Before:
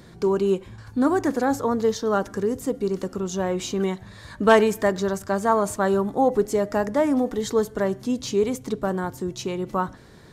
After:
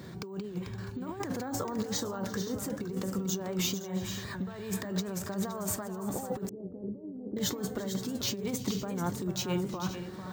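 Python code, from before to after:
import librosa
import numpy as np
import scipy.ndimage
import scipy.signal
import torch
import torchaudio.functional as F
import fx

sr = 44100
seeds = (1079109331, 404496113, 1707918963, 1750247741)

y = fx.comb_fb(x, sr, f0_hz=190.0, decay_s=0.21, harmonics='all', damping=0.0, mix_pct=60)
y = fx.over_compress(y, sr, threshold_db=-35.0, ratio=-1.0)
y = fx.low_shelf(y, sr, hz=190.0, db=6.0)
y = fx.echo_multitap(y, sr, ms=(340, 443, 517), db=(-19.0, -9.0, -14.0))
y = np.repeat(scipy.signal.resample_poly(y, 1, 2), 2)[:len(y)]
y = fx.ladder_lowpass(y, sr, hz=470.0, resonance_pct=40, at=(6.49, 7.37))
y = fx.dynamic_eq(y, sr, hz=330.0, q=0.71, threshold_db=-40.0, ratio=4.0, max_db=-3)
y = scipy.signal.sosfilt(scipy.signal.butter(2, 97.0, 'highpass', fs=sr, output='sos'), y)
y = fx.record_warp(y, sr, rpm=78.0, depth_cents=100.0)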